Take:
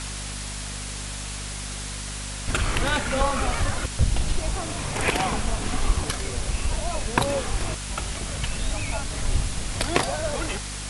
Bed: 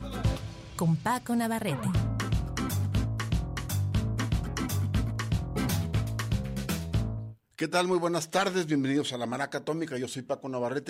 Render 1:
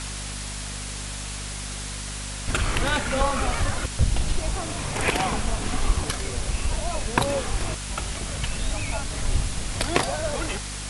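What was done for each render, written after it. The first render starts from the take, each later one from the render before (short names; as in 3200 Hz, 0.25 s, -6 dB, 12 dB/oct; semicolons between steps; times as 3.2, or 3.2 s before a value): nothing audible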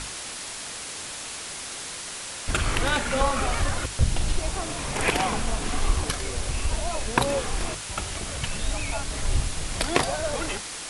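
notches 50/100/150/200/250 Hz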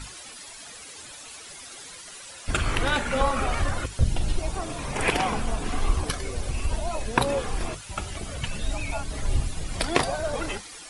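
denoiser 12 dB, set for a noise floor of -36 dBFS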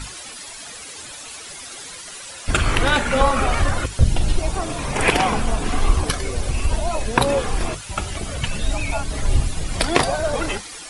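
gain +6.5 dB; limiter -2 dBFS, peak gain reduction 2 dB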